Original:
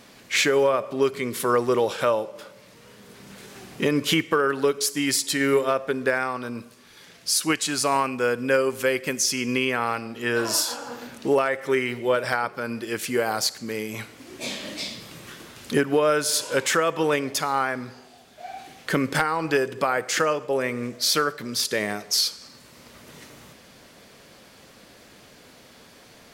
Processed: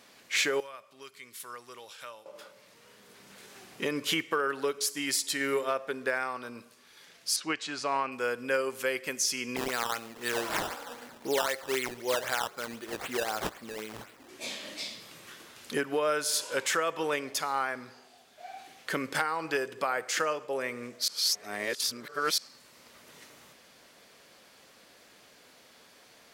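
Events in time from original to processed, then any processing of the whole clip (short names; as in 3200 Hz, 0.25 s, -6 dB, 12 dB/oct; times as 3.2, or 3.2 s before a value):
0.6–2.26 passive tone stack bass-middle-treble 5-5-5
7.36–8.12 air absorption 130 m
9.56–14.29 decimation with a swept rate 14× 3.9 Hz
21.08–22.38 reverse
whole clip: low shelf 270 Hz -12 dB; gain -5.5 dB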